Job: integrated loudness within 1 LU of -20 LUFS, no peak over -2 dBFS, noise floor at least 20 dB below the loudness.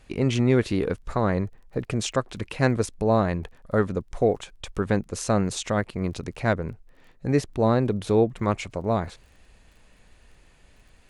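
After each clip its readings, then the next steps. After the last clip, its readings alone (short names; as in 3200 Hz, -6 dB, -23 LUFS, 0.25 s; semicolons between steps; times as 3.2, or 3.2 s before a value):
ticks 21/s; loudness -25.5 LUFS; peak -6.5 dBFS; loudness target -20.0 LUFS
-> de-click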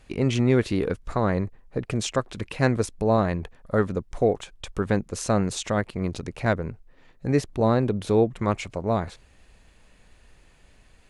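ticks 0/s; loudness -25.5 LUFS; peak -6.5 dBFS; loudness target -20.0 LUFS
-> gain +5.5 dB; limiter -2 dBFS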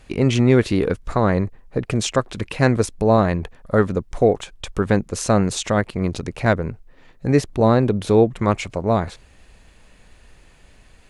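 loudness -20.0 LUFS; peak -2.0 dBFS; noise floor -51 dBFS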